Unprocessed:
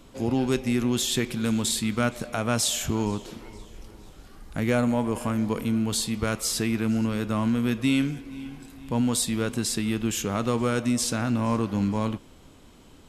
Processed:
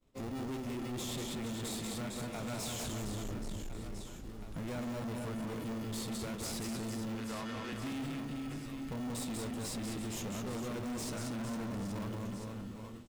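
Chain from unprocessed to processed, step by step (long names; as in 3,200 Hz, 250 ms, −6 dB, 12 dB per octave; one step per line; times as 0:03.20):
0:02.93–0:03.55: spectral tilt −3.5 dB per octave
in parallel at −3.5 dB: decimation without filtering 28×
0:07.15–0:07.73: on the sum: band-pass filter 620–5,100 Hz
downward compressor 3 to 1, threshold −25 dBFS, peak gain reduction 11.5 dB
flanger 1.3 Hz, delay 5.2 ms, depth 7 ms, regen +84%
reverse bouncing-ball delay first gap 190 ms, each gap 1.4×, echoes 5
downward expander −39 dBFS
soft clipping −33.5 dBFS, distortion −8 dB
level −2.5 dB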